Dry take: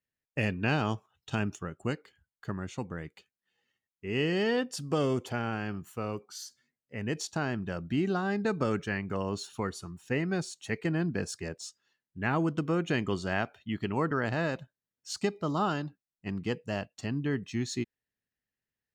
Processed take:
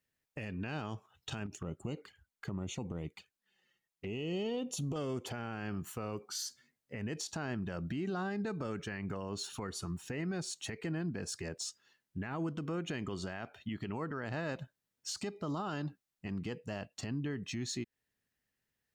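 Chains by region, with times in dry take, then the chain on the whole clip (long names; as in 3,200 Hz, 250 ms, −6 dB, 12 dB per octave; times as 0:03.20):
0:01.46–0:04.96: downward compressor 10 to 1, threshold −35 dBFS + flanger swept by the level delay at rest 6.2 ms, full sweep at −39.5 dBFS
whole clip: downward compressor 6 to 1, threshold −36 dBFS; brickwall limiter −35 dBFS; level +5.5 dB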